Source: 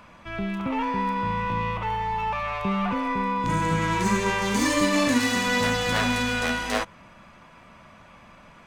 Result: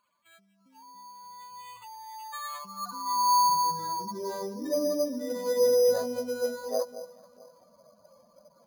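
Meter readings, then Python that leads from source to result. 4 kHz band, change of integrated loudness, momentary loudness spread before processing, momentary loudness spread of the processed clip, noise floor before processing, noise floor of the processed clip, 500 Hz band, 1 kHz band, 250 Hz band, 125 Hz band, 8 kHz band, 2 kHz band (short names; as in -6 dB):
-7.5 dB, -3.0 dB, 7 LU, 23 LU, -50 dBFS, -66 dBFS, +2.0 dB, -3.0 dB, -13.0 dB, -23.0 dB, -3.0 dB, -21.5 dB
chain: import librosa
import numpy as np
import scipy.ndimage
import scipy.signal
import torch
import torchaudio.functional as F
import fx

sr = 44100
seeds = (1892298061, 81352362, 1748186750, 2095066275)

y = fx.spec_expand(x, sr, power=2.4)
y = fx.dynamic_eq(y, sr, hz=3100.0, q=1.3, threshold_db=-48.0, ratio=4.0, max_db=-5)
y = fx.echo_alternate(y, sr, ms=219, hz=870.0, feedback_pct=50, wet_db=-12.5)
y = fx.filter_sweep_bandpass(y, sr, from_hz=5400.0, to_hz=520.0, start_s=0.57, end_s=4.46, q=6.6)
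y = np.repeat(y[::8], 8)[:len(y)]
y = y * librosa.db_to_amplitude(7.0)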